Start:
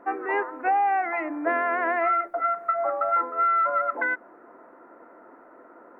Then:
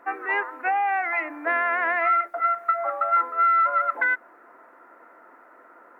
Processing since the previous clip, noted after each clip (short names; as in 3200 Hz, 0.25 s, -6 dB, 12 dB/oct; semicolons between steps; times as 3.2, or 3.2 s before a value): tilt shelf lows -9 dB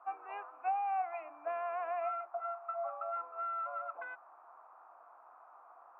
vowel filter a; band noise 680–1300 Hz -54 dBFS; gain -5 dB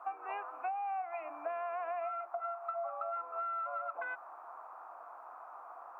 compressor 6:1, threshold -44 dBFS, peak gain reduction 13 dB; gain +8 dB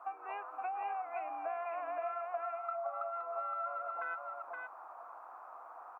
echo 0.519 s -3.5 dB; gain -2 dB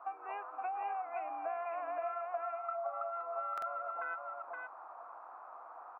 air absorption 200 m; stuck buffer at 3.53, samples 2048, times 1; gain +1 dB